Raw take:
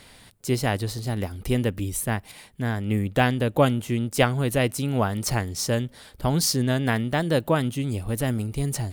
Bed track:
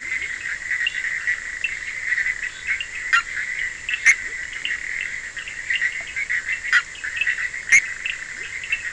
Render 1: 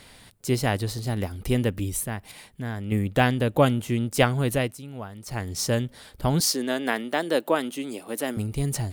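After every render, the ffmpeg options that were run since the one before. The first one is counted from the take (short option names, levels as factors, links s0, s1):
-filter_complex "[0:a]asettb=1/sr,asplit=3[s0][s1][s2];[s0]atrim=end=2.034[s3];[s1]atrim=start=2.03:end=2.92,asetpts=PTS-STARTPTS,afade=t=in:d=0.004:c=qsin,afade=t=out:st=0.886:d=0.004:c=qsin,acompressor=threshold=0.0158:ratio=1.5:attack=3.2:release=140:knee=1:detection=peak[s4];[s2]atrim=start=2.916[s5];[s3][s4]acrossfade=d=0.004:c1=hsin:c2=qsin[s6];[s6][s5]acrossfade=d=0.004:c1=qsin:c2=hsin,asettb=1/sr,asplit=3[s7][s8][s9];[s7]atrim=end=6.404[s10];[s8]atrim=start=6.4:end=8.37,asetpts=PTS-STARTPTS,afade=t=in:d=0.004:c=qsin,afade=t=out:st=1.966:d=0.004:c=qsin,highpass=f=260:w=0.5412,highpass=f=260:w=1.3066[s11];[s9]atrim=start=8.366[s12];[s10][s11]acrossfade=d=0.004:c1=hsin:c2=qsin[s13];[s13][s12]acrossfade=d=0.004:c1=qsin:c2=hsin,asplit=3[s14][s15][s16];[s14]atrim=end=4.78,asetpts=PTS-STARTPTS,afade=t=out:st=4.52:d=0.26:silence=0.211349[s17];[s15]atrim=start=4.78:end=5.27,asetpts=PTS-STARTPTS,volume=0.211[s18];[s16]atrim=start=5.27,asetpts=PTS-STARTPTS,afade=t=in:d=0.26:silence=0.211349[s19];[s17][s18][s19]concat=n=3:v=0:a=1"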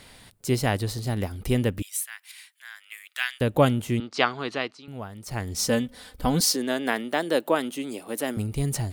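-filter_complex "[0:a]asettb=1/sr,asplit=3[s0][s1][s2];[s0]atrim=end=1.824[s3];[s1]atrim=start=1.82:end=3.41,asetpts=PTS-STARTPTS,afade=t=in:d=0.004:c=qsin,afade=t=out:st=1.586:d=0.004:c=qsin,highpass=f=1500:w=0.5412,highpass=f=1500:w=1.3066[s4];[s2]atrim=start=3.406[s5];[s3][s4]acrossfade=d=0.004:c1=hsin:c2=qsin[s6];[s6][s5]acrossfade=d=0.004:c1=qsin:c2=hsin,asettb=1/sr,asplit=3[s7][s8][s9];[s7]atrim=end=4.004[s10];[s8]atrim=start=4:end=4.88,asetpts=PTS-STARTPTS,afade=t=in:d=0.004:c=qsin,afade=t=out:st=0.876:d=0.004:c=qsin,highpass=360,equalizer=f=550:t=q:w=4:g=-8,equalizer=f=1200:t=q:w=4:g=6,equalizer=f=4400:t=q:w=4:g=7,lowpass=f=5300:w=0.5412,lowpass=f=5300:w=1.3066[s11];[s9]atrim=start=4.876[s12];[s10][s11]acrossfade=d=0.004:c1=hsin:c2=qsin[s13];[s13][s12]acrossfade=d=0.004:c1=qsin:c2=hsin,asettb=1/sr,asplit=3[s14][s15][s16];[s14]atrim=end=5.544[s17];[s15]atrim=start=5.54:end=6.56,asetpts=PTS-STARTPTS,afade=t=in:d=0.004:c=qsin,afade=t=out:st=1.016:d=0.004:c=qsin,aecho=1:1:4:0.61,atrim=end_sample=44982[s18];[s16]atrim=start=6.556[s19];[s17][s18]acrossfade=d=0.004:c1=hsin:c2=qsin[s20];[s20][s19]acrossfade=d=0.004:c1=qsin:c2=hsin"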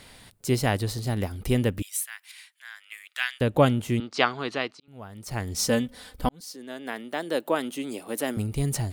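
-filter_complex "[0:a]asettb=1/sr,asplit=3[s0][s1][s2];[s0]atrim=end=2.254[s3];[s1]atrim=start=2.25:end=3.85,asetpts=PTS-STARTPTS,afade=t=in:d=0.004:c=qsin,afade=t=out:st=1.596:d=0.004:c=qsin,highshelf=f=11000:g=-8[s4];[s2]atrim=start=3.846[s5];[s3][s4]acrossfade=d=0.004:c1=hsin:c2=qsin[s6];[s6][s5]acrossfade=d=0.004:c1=qsin:c2=hsin,asplit=3[s7][s8][s9];[s7]atrim=end=4.8,asetpts=PTS-STARTPTS,afade=t=out:st=4.796:d=0.004:c=hsin[s10];[s8]atrim=start=4.8:end=6.29,asetpts=PTS-STARTPTS,afade=t=in:d=0.41,afade=t=out:st=1.486:d=0.004:c=hsin[s11];[s9]atrim=start=6.29,asetpts=PTS-STARTPTS,afade=t=in:d=1.62[s12];[s10][s11][s12]concat=n=3:v=0:a=1"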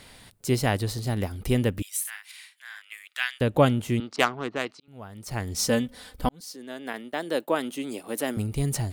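-filter_complex "[0:a]asettb=1/sr,asplit=3[s0][s1][s2];[s0]atrim=end=2.004[s3];[s1]atrim=start=2:end=2.82,asetpts=PTS-STARTPTS,afade=t=in:d=0.004:c=qsin,afade=t=out:st=0.816:d=0.004:c=qsin,asplit=2[s4][s5];[s5]adelay=48,volume=0.562[s6];[s4][s6]amix=inputs=2:normalize=0,atrim=end_sample=36162[s7];[s2]atrim=start=2.816[s8];[s3][s7]acrossfade=d=0.004:c1=hsin:c2=qsin[s9];[s9][s8]acrossfade=d=0.004:c1=qsin:c2=hsin,asettb=1/sr,asplit=3[s10][s11][s12];[s10]atrim=end=4.164[s13];[s11]atrim=start=4.16:end=4.66,asetpts=PTS-STARTPTS,afade=t=in:d=0.004:c=qsin,afade=t=out:st=0.496:d=0.004:c=qsin,adynamicsmooth=sensitivity=1.5:basefreq=990[s14];[s12]atrim=start=4.656[s15];[s13][s14]acrossfade=d=0.004:c1=hsin:c2=qsin[s16];[s16][s15]acrossfade=d=0.004:c1=qsin:c2=hsin,asettb=1/sr,asplit=3[s17][s18][s19];[s17]atrim=end=6.934[s20];[s18]atrim=start=6.93:end=8.04,asetpts=PTS-STARTPTS,afade=t=in:d=0.004:c=qsin,afade=t=out:st=1.106:d=0.004:c=qsin,agate=range=0.0224:threshold=0.0112:ratio=3:release=100:detection=peak[s21];[s19]atrim=start=8.036[s22];[s20][s21]acrossfade=d=0.004:c1=hsin:c2=qsin[s23];[s23][s22]acrossfade=d=0.004:c1=qsin:c2=hsin"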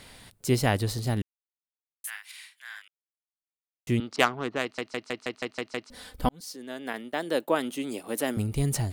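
-filter_complex "[0:a]asplit=13[s0][s1][s2][s3][s4][s5][s6][s7][s8][s9][s10][s11][s12];[s0]atrim=end=1.22,asetpts=PTS-STARTPTS,afade=t=out:st=1.216:d=0.004:c=hsin[s13];[s1]atrim=start=1.22:end=2.04,asetpts=PTS-STARTPTS,volume=0[s14];[s2]atrim=start=2.04:end=2.88,asetpts=PTS-STARTPTS,afade=t=in:d=0.004:c=hsin,afade=t=out:st=0.836:d=0.004:c=hsin[s15];[s3]atrim=start=2.88:end=3.87,asetpts=PTS-STARTPTS,volume=0[s16];[s4]atrim=start=3.87:end=4.782,asetpts=PTS-STARTPTS,afade=t=in:d=0.004:c=hsin[s17];[s5]atrim=start=4.618:end=4.782[s18];[s6]atrim=start=4.618:end=4.782[s19];[s7]atrim=start=4.618:end=4.782[s20];[s8]atrim=start=4.618:end=4.782[s21];[s9]atrim=start=4.618:end=4.782[s22];[s10]atrim=start=4.618:end=4.782[s23];[s11]atrim=start=4.618:end=4.782[s24];[s12]atrim=start=5.898[s25];[s13][s14][s15][s16][s17]concat=n=5:v=0:a=1[s26];[s26][s18]acrossfade=d=0.004:c1=hsin:c2=hsin[s27];[s27][s19]acrossfade=d=0.004:c1=hsin:c2=hsin[s28];[s28][s20]acrossfade=d=0.004:c1=hsin:c2=hsin[s29];[s29][s21]acrossfade=d=0.004:c1=hsin:c2=hsin[s30];[s30][s22]acrossfade=d=0.004:c1=hsin:c2=hsin[s31];[s31][s23]acrossfade=d=0.004:c1=hsin:c2=hsin[s32];[s32][s24]acrossfade=d=0.004:c1=hsin:c2=hsin[s33];[s33][s25]acrossfade=d=0.004:c1=hsin:c2=hsin"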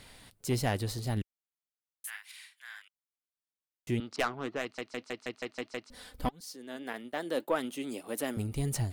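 -af "asoftclip=type=tanh:threshold=0.178,flanger=delay=0.2:depth=4:regen=76:speed=1.7:shape=triangular"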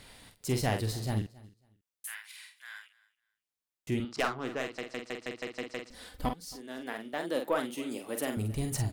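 -filter_complex "[0:a]asplit=2[s0][s1];[s1]adelay=46,volume=0.473[s2];[s0][s2]amix=inputs=2:normalize=0,aecho=1:1:273|546:0.0794|0.0159"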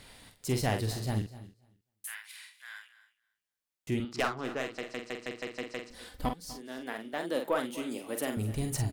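-af "aecho=1:1:248:0.133"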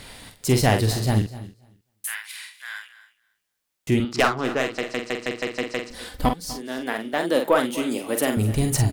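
-af "volume=3.55"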